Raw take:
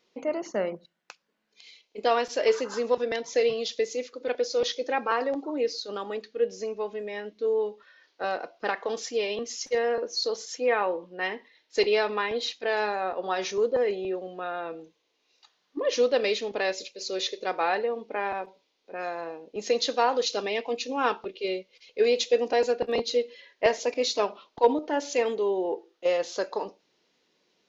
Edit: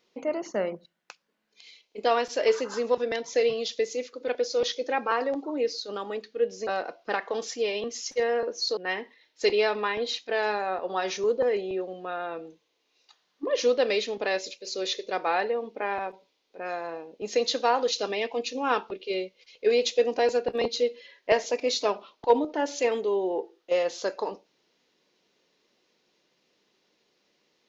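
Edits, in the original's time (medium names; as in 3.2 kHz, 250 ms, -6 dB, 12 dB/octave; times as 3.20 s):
6.67–8.22 s: delete
10.32–11.11 s: delete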